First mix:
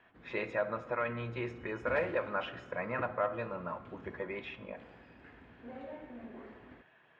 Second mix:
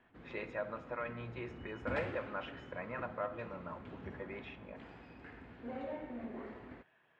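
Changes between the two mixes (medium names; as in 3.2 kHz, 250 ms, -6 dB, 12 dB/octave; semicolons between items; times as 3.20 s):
speech -6.5 dB; background +3.5 dB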